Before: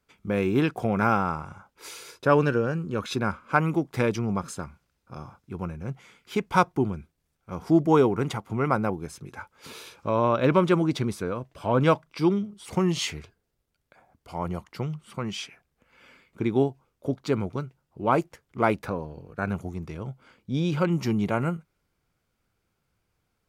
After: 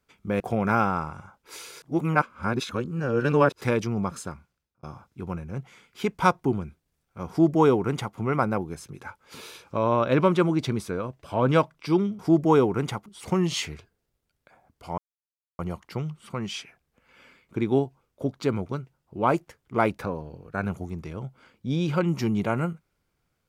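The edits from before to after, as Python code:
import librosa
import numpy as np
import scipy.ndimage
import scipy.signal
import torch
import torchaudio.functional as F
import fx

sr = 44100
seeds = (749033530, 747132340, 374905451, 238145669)

y = fx.edit(x, sr, fx.cut(start_s=0.4, length_s=0.32),
    fx.reverse_span(start_s=2.14, length_s=1.79),
    fx.fade_out_span(start_s=4.56, length_s=0.59),
    fx.duplicate(start_s=7.61, length_s=0.87, to_s=12.51),
    fx.insert_silence(at_s=14.43, length_s=0.61), tone=tone)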